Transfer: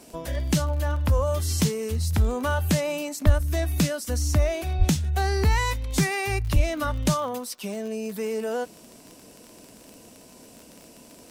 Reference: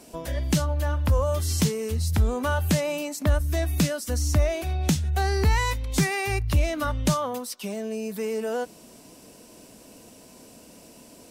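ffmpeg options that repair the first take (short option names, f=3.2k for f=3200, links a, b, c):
-filter_complex "[0:a]adeclick=t=4,asplit=3[a][b][c];[a]afade=t=out:st=3.25:d=0.02[d];[b]highpass=f=140:w=0.5412,highpass=f=140:w=1.3066,afade=t=in:st=3.25:d=0.02,afade=t=out:st=3.37:d=0.02[e];[c]afade=t=in:st=3.37:d=0.02[f];[d][e][f]amix=inputs=3:normalize=0,asplit=3[g][h][i];[g]afade=t=out:st=4.78:d=0.02[j];[h]highpass=f=140:w=0.5412,highpass=f=140:w=1.3066,afade=t=in:st=4.78:d=0.02,afade=t=out:st=4.9:d=0.02[k];[i]afade=t=in:st=4.9:d=0.02[l];[j][k][l]amix=inputs=3:normalize=0,asplit=3[m][n][o];[m]afade=t=out:st=6.54:d=0.02[p];[n]highpass=f=140:w=0.5412,highpass=f=140:w=1.3066,afade=t=in:st=6.54:d=0.02,afade=t=out:st=6.66:d=0.02[q];[o]afade=t=in:st=6.66:d=0.02[r];[p][q][r]amix=inputs=3:normalize=0"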